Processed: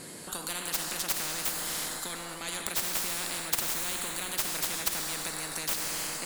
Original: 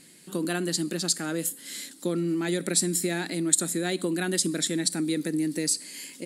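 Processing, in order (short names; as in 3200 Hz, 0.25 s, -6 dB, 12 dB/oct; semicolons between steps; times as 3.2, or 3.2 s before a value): tracing distortion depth 0.096 ms; resonant high shelf 1600 Hz -8.5 dB, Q 1.5; plate-style reverb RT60 2.6 s, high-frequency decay 0.8×, DRR 6.5 dB; spectral compressor 10:1; gain +4 dB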